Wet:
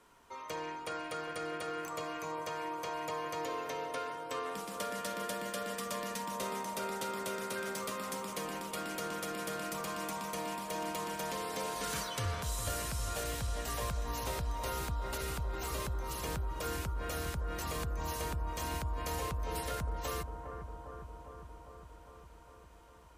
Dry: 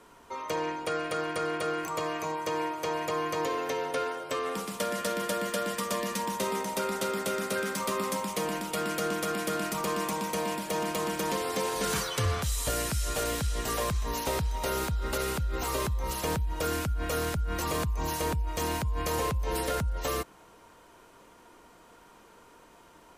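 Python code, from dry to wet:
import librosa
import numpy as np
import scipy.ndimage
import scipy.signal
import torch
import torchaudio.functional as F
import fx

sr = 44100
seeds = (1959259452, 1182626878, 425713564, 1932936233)

p1 = fx.peak_eq(x, sr, hz=330.0, db=-4.0, octaves=2.5)
p2 = p1 + fx.echo_bbd(p1, sr, ms=404, stages=4096, feedback_pct=73, wet_db=-8.0, dry=0)
y = p2 * librosa.db_to_amplitude(-6.5)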